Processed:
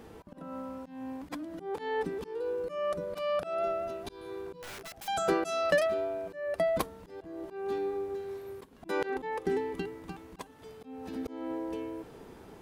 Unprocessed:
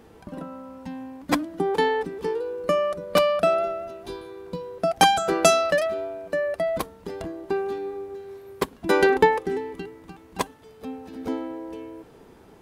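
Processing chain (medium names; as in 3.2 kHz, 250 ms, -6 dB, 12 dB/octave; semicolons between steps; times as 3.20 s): in parallel at 0 dB: compression 6:1, threshold -32 dBFS, peak gain reduction 19 dB; on the sum: slow attack 249 ms; 4.62–5.08 s: integer overflow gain 33.5 dB; trim -5.5 dB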